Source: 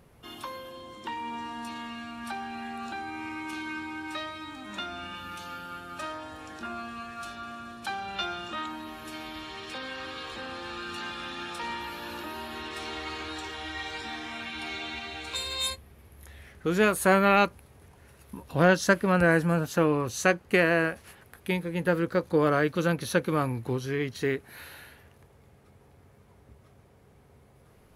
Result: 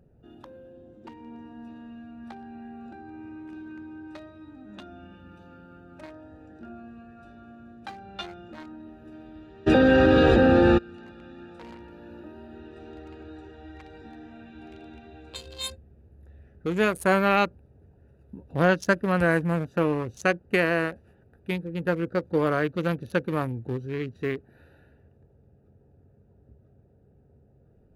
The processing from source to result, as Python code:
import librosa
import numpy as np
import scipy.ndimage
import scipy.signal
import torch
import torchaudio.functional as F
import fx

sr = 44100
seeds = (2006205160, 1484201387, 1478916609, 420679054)

y = fx.wiener(x, sr, points=41)
y = fx.env_flatten(y, sr, amount_pct=100, at=(9.66, 10.77), fade=0.02)